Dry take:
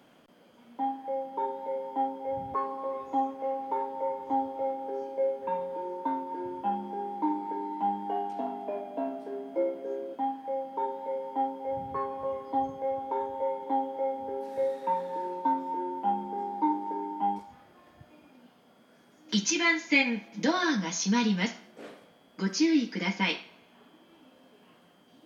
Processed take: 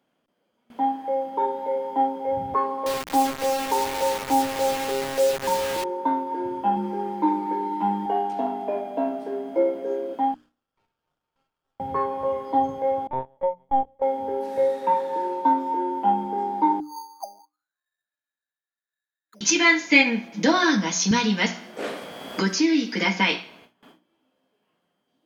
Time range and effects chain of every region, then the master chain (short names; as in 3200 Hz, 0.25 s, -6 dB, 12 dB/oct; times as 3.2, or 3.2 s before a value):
2.86–5.84 LPF 1600 Hz + low shelf 87 Hz +9.5 dB + requantised 6-bit, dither none
6.76–8.06 bell 700 Hz -13 dB 0.2 oct + comb 5.8 ms, depth 80%
10.34–11.8 steep high-pass 1200 Hz 72 dB/oct + high shelf 3900 Hz -12 dB + running maximum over 17 samples
13.07–14.02 gate -30 dBFS, range -27 dB + LPC vocoder at 8 kHz pitch kept
16.8–19.41 auto-wah 580–1800 Hz, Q 21, down, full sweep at -25 dBFS + careless resampling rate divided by 8×, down filtered, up hold
21.11–23.32 low shelf 240 Hz -6 dB + three-band squash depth 70%
whole clip: gate with hold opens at -46 dBFS; notches 60/120/180/240/300 Hz; gain +7.5 dB